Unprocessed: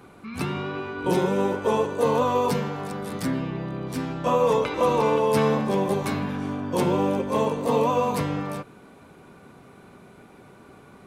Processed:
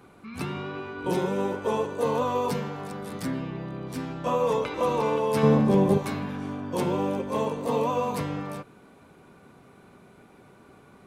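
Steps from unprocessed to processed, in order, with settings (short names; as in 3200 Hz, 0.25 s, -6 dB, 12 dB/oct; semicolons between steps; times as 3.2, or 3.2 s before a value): 5.43–5.98 low shelf 440 Hz +11.5 dB; gain -4 dB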